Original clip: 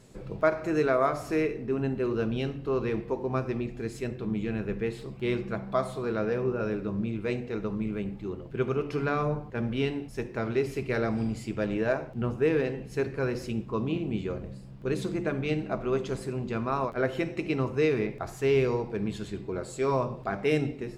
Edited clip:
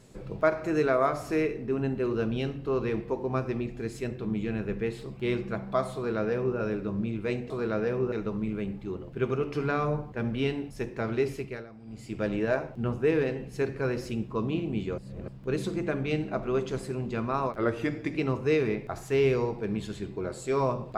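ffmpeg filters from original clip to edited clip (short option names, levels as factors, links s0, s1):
-filter_complex "[0:a]asplit=9[s0][s1][s2][s3][s4][s5][s6][s7][s8];[s0]atrim=end=7.502[s9];[s1]atrim=start=5.948:end=6.572[s10];[s2]atrim=start=7.498:end=11.04,asetpts=PTS-STARTPTS,afade=t=out:st=3.162:d=0.38:silence=0.105925[s11];[s3]atrim=start=11.04:end=11.23,asetpts=PTS-STARTPTS,volume=0.106[s12];[s4]atrim=start=11.23:end=14.362,asetpts=PTS-STARTPTS,afade=t=in:d=0.38:silence=0.105925[s13];[s5]atrim=start=14.358:end=14.662,asetpts=PTS-STARTPTS,areverse[s14];[s6]atrim=start=14.658:end=16.954[s15];[s7]atrim=start=16.95:end=17.49,asetpts=PTS-STARTPTS,asetrate=39249,aresample=44100,atrim=end_sample=26757,asetpts=PTS-STARTPTS[s16];[s8]atrim=start=17.486[s17];[s9][s10]acrossfade=d=0.004:c1=hsin:c2=hsin[s18];[s11][s12][s13]concat=n=3:v=0:a=1[s19];[s18][s19]acrossfade=d=0.004:c1=hsin:c2=hsin[s20];[s20][s14]acrossfade=d=0.004:c1=hsin:c2=hsin[s21];[s21][s15]acrossfade=d=0.004:c1=hsin:c2=hsin[s22];[s22][s16]acrossfade=d=0.004:c1=hsin:c2=hsin[s23];[s23][s17]acrossfade=d=0.004:c1=hsin:c2=hsin"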